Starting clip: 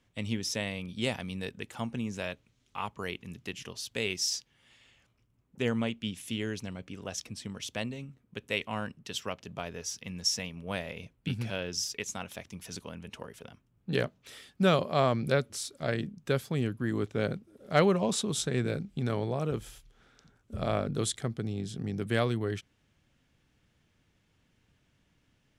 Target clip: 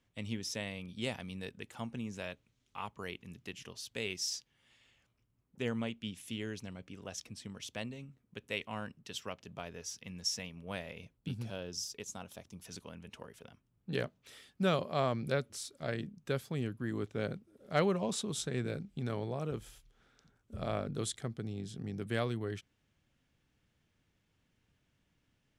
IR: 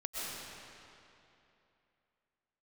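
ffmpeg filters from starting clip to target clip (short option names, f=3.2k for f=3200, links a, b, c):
-filter_complex "[0:a]asettb=1/sr,asplit=3[a][b][c];[a]atrim=end=11.174[d];[b]atrim=start=11.17:end=12.65,asetpts=PTS-STARTPTS,afade=t=in:d=0.004:c=qsin,afade=t=out:st=1.476:d=0.004:c=qsin,equalizer=f=2.1k:w=1.4:g=-8.5[e];[c]atrim=start=12.646[f];[d][e]acrossfade=d=0.004:c1=hsin:c2=qsin[g];[g][f]acrossfade=d=0.004:c1=qsin:c2=hsin,volume=-6dB"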